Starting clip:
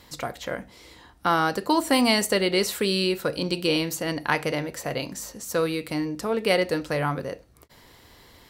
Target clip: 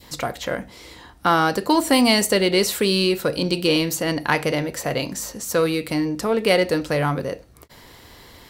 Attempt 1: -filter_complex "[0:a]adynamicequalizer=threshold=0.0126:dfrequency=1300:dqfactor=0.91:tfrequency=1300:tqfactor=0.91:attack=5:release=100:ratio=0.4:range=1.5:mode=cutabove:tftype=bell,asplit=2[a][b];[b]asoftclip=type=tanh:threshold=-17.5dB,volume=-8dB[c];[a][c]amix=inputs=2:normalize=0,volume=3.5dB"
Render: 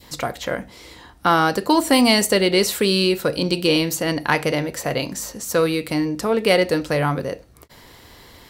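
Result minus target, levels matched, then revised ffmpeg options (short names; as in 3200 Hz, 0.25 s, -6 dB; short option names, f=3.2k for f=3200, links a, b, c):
soft clip: distortion -9 dB
-filter_complex "[0:a]adynamicequalizer=threshold=0.0126:dfrequency=1300:dqfactor=0.91:tfrequency=1300:tqfactor=0.91:attack=5:release=100:ratio=0.4:range=1.5:mode=cutabove:tftype=bell,asplit=2[a][b];[b]asoftclip=type=tanh:threshold=-28dB,volume=-8dB[c];[a][c]amix=inputs=2:normalize=0,volume=3.5dB"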